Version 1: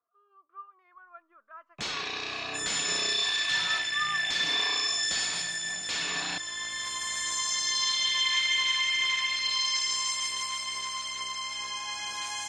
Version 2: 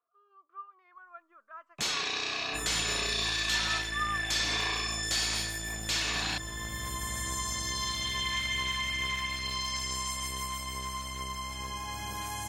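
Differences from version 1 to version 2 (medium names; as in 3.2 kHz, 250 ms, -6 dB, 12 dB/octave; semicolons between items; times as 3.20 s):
second sound: remove frequency weighting ITU-R 468; master: remove distance through air 88 m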